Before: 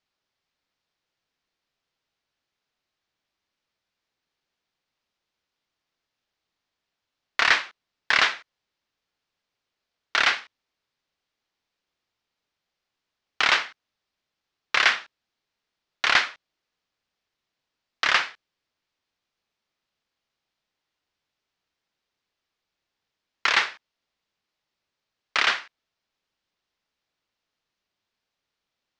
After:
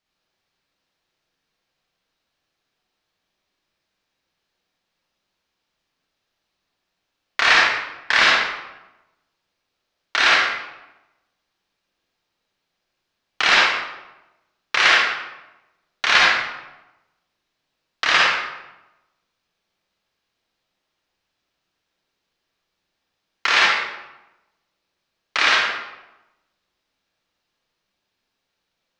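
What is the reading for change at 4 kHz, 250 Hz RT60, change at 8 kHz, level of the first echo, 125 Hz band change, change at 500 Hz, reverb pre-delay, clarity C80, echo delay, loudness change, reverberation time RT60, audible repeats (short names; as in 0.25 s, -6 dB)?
+6.0 dB, 1.1 s, +6.0 dB, none, n/a, +8.0 dB, 38 ms, 2.0 dB, none, +5.5 dB, 1.0 s, none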